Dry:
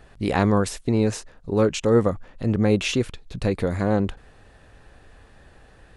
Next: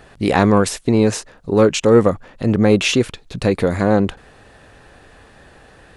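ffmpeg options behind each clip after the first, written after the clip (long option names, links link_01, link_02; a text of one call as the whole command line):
ffmpeg -i in.wav -af "lowshelf=frequency=79:gain=-11.5,acontrast=50,volume=2dB" out.wav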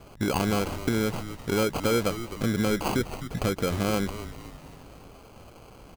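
ffmpeg -i in.wav -filter_complex "[0:a]acrusher=samples=24:mix=1:aa=0.000001,acompressor=threshold=-22dB:ratio=3,asplit=6[link_01][link_02][link_03][link_04][link_05][link_06];[link_02]adelay=257,afreqshift=-120,volume=-11.5dB[link_07];[link_03]adelay=514,afreqshift=-240,volume=-18.1dB[link_08];[link_04]adelay=771,afreqshift=-360,volume=-24.6dB[link_09];[link_05]adelay=1028,afreqshift=-480,volume=-31.2dB[link_10];[link_06]adelay=1285,afreqshift=-600,volume=-37.7dB[link_11];[link_01][link_07][link_08][link_09][link_10][link_11]amix=inputs=6:normalize=0,volume=-3dB" out.wav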